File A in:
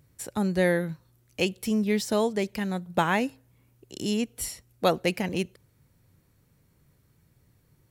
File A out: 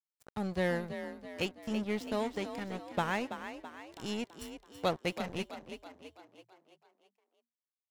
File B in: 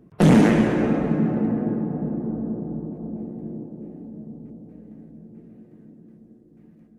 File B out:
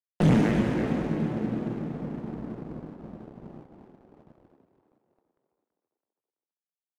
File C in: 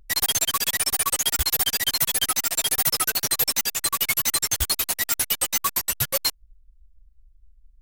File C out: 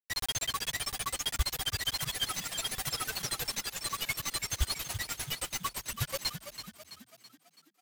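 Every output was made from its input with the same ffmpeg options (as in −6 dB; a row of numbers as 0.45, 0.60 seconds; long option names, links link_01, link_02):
-filter_complex "[0:a]firequalizer=gain_entry='entry(120,0);entry(190,-7);entry(3000,-6);entry(14000,-17)':delay=0.05:min_phase=1,aeval=exprs='sgn(val(0))*max(abs(val(0))-0.00944,0)':channel_layout=same,asplit=2[link_01][link_02];[link_02]asplit=6[link_03][link_04][link_05][link_06][link_07][link_08];[link_03]adelay=330,afreqshift=39,volume=-10dB[link_09];[link_04]adelay=660,afreqshift=78,volume=-15.8dB[link_10];[link_05]adelay=990,afreqshift=117,volume=-21.7dB[link_11];[link_06]adelay=1320,afreqshift=156,volume=-27.5dB[link_12];[link_07]adelay=1650,afreqshift=195,volume=-33.4dB[link_13];[link_08]adelay=1980,afreqshift=234,volume=-39.2dB[link_14];[link_09][link_10][link_11][link_12][link_13][link_14]amix=inputs=6:normalize=0[link_15];[link_01][link_15]amix=inputs=2:normalize=0"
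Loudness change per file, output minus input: −9.0, −5.5, −12.0 LU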